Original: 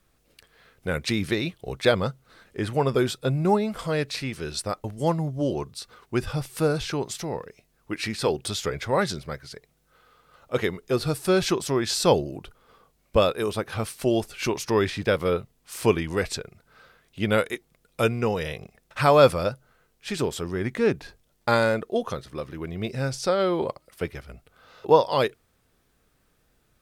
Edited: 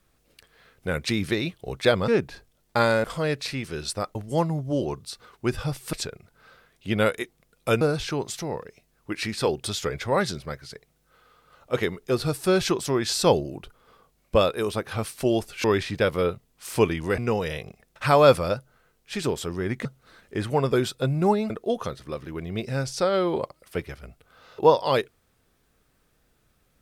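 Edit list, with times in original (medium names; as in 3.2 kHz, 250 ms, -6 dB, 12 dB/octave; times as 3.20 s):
2.08–3.73 s: swap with 20.80–21.76 s
14.45–14.71 s: delete
16.25–18.13 s: move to 6.62 s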